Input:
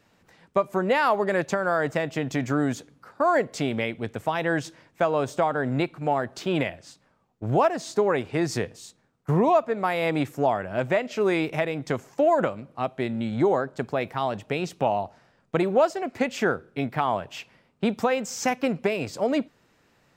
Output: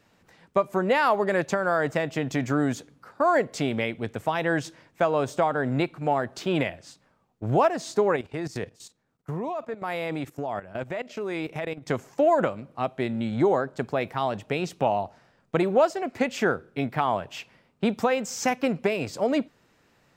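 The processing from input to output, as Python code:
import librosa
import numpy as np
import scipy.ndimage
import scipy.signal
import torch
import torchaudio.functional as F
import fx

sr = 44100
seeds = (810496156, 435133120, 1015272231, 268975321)

y = fx.level_steps(x, sr, step_db=15, at=(8.16, 11.88))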